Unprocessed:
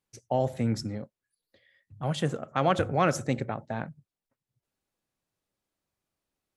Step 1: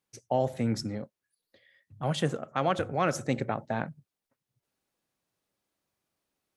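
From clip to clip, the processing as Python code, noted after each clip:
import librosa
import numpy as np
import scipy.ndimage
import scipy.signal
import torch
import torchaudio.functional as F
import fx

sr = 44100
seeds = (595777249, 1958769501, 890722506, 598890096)

y = fx.low_shelf(x, sr, hz=68.0, db=-12.0)
y = fx.notch(y, sr, hz=7400.0, q=29.0)
y = fx.rider(y, sr, range_db=3, speed_s=0.5)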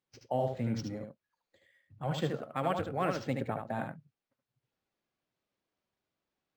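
y = fx.spec_quant(x, sr, step_db=15)
y = y + 10.0 ** (-5.5 / 20.0) * np.pad(y, (int(75 * sr / 1000.0), 0))[:len(y)]
y = np.interp(np.arange(len(y)), np.arange(len(y))[::4], y[::4])
y = y * 10.0 ** (-4.5 / 20.0)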